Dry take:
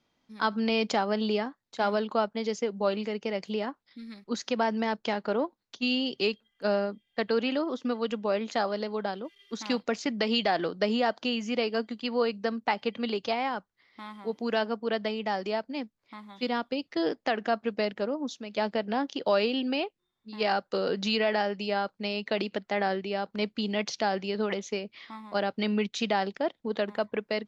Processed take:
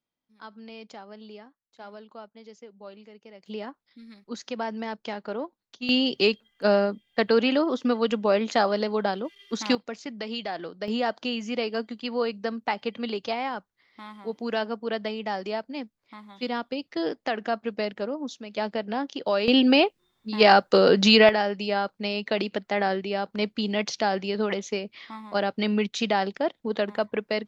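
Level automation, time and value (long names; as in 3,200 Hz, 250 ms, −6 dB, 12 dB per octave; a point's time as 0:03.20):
−16.5 dB
from 0:03.46 −4 dB
from 0:05.89 +6 dB
from 0:09.75 −6.5 dB
from 0:10.88 0 dB
from 0:19.48 +11 dB
from 0:21.29 +3 dB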